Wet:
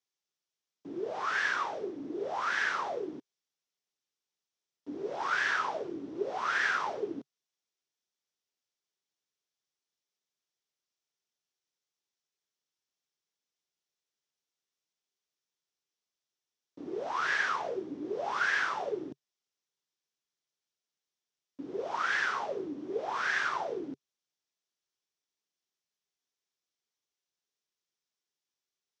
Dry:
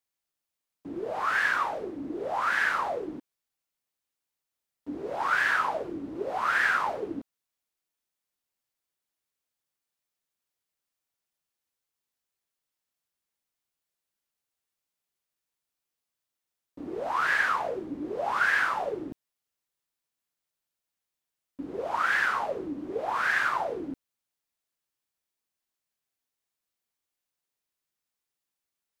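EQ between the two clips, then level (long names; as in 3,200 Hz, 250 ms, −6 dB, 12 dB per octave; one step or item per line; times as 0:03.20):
loudspeaker in its box 120–6,700 Hz, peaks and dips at 140 Hz +3 dB, 400 Hz +7 dB, 3,400 Hz +4 dB, 5,700 Hz +6 dB
high-shelf EQ 5,000 Hz +6.5 dB
−5.5 dB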